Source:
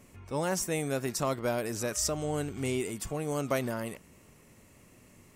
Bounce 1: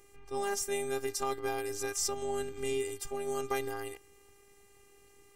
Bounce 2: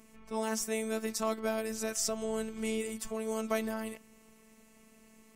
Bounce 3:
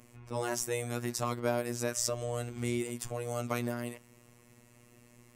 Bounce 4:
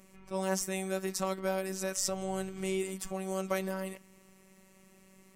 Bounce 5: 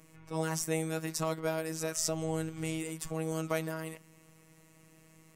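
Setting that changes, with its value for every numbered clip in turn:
robotiser, frequency: 400, 220, 120, 190, 160 Hz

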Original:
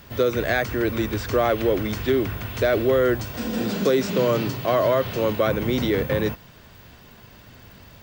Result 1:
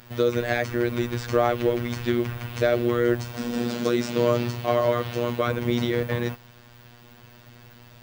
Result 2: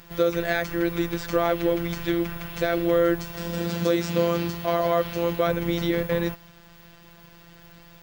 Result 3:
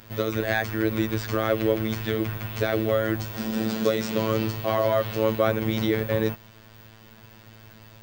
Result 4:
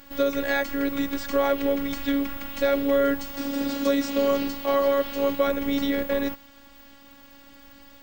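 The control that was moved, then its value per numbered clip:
robotiser, frequency: 120, 170, 110, 280 Hz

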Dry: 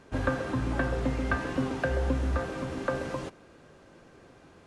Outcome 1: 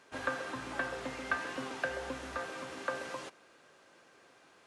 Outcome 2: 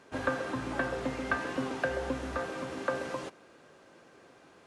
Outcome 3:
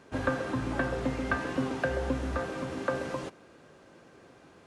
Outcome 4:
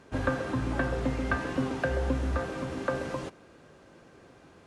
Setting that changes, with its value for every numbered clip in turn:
HPF, cutoff: 1200, 370, 130, 44 Hz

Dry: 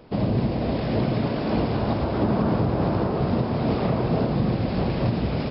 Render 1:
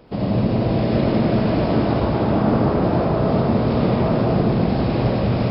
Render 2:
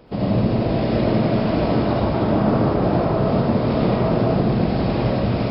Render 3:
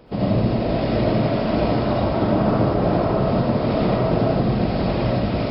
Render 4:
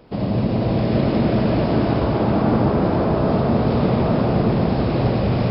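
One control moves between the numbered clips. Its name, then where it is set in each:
digital reverb, RT60: 2.3, 1, 0.4, 5.1 s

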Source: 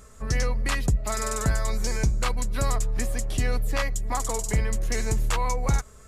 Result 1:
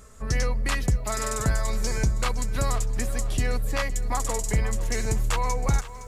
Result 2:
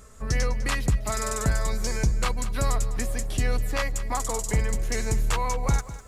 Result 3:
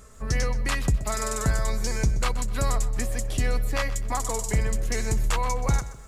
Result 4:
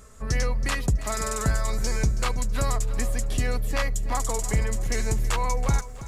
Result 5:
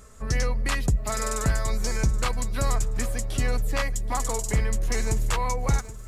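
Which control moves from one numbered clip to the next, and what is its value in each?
lo-fi delay, time: 0.514, 0.202, 0.127, 0.325, 0.776 s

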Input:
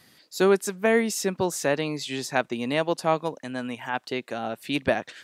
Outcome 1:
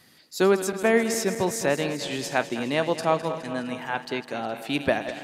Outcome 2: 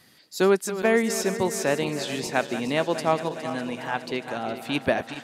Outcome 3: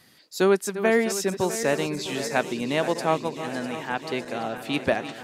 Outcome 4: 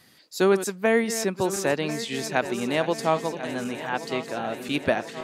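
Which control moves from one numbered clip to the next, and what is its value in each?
regenerating reverse delay, time: 0.104, 0.206, 0.327, 0.521 s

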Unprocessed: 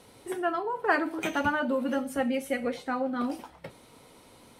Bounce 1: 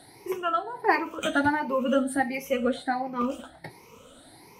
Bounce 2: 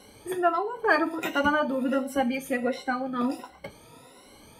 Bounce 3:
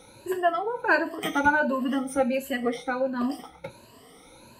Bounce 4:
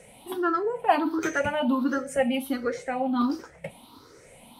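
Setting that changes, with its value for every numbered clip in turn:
moving spectral ripple, ripples per octave: 0.8, 2.1, 1.4, 0.52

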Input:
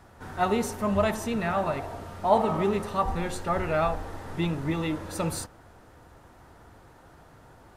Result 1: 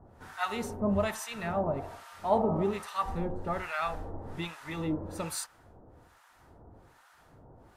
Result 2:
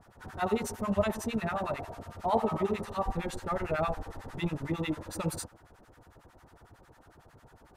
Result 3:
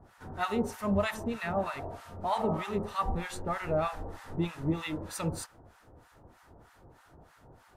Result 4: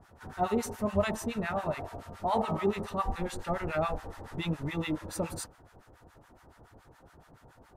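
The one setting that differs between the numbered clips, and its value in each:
harmonic tremolo, rate: 1.2, 11, 3.2, 7.1 Hz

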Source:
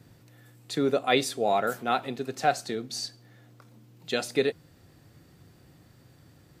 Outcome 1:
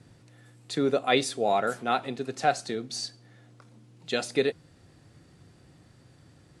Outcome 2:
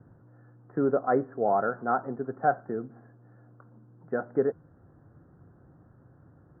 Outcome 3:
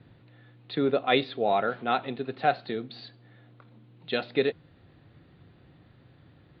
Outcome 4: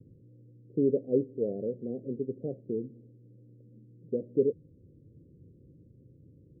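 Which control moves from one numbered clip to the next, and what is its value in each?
steep low-pass, frequency: 11000, 1600, 4100, 520 Hz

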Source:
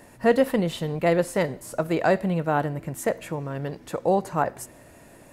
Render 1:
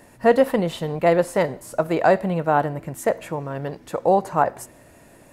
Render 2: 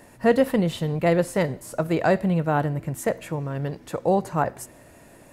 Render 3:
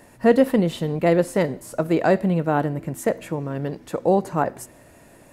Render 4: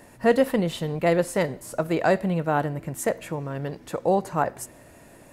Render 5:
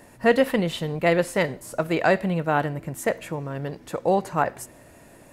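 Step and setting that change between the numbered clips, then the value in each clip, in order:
dynamic EQ, frequency: 820, 100, 270, 8400, 2500 Hz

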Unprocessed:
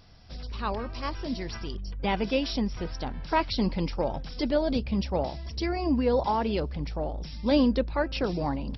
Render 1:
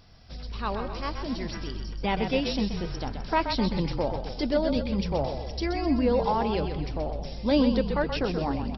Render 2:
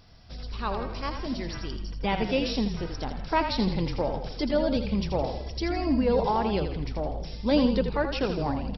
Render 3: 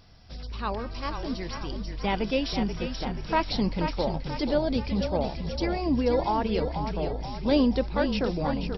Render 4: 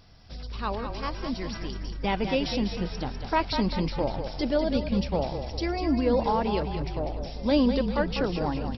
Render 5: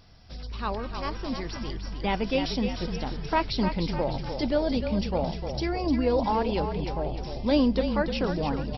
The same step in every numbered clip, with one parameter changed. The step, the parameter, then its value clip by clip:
frequency-shifting echo, time: 128, 82, 483, 198, 302 ms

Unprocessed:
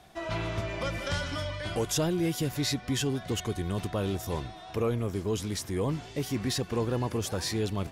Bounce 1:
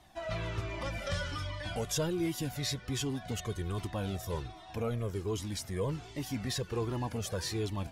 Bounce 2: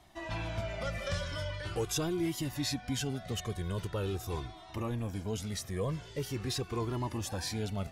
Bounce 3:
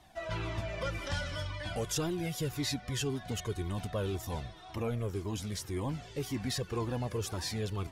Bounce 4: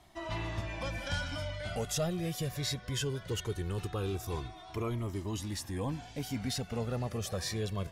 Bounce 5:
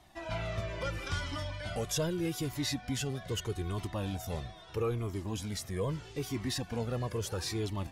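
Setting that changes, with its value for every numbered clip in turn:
cascading flanger, rate: 1.3, 0.43, 1.9, 0.2, 0.78 Hz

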